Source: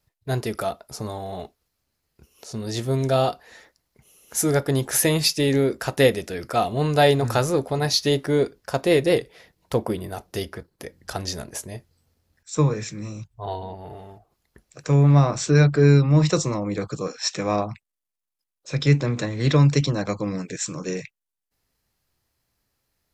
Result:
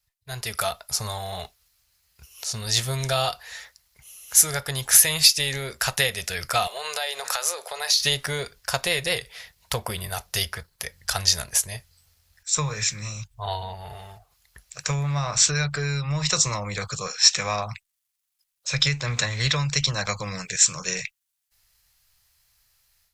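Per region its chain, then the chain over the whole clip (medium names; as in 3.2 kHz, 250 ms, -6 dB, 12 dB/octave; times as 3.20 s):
6.67–8.00 s: Chebyshev high-pass 470 Hz, order 3 + compression 16:1, threshold -27 dBFS
whole clip: compression 6:1, threshold -20 dBFS; amplifier tone stack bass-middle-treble 10-0-10; level rider gain up to 12 dB; trim +1 dB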